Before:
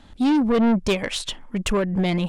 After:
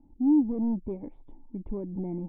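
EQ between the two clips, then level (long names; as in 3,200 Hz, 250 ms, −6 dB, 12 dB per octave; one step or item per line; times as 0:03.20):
formant resonators in series u
low-shelf EQ 63 Hz +10.5 dB
−2.0 dB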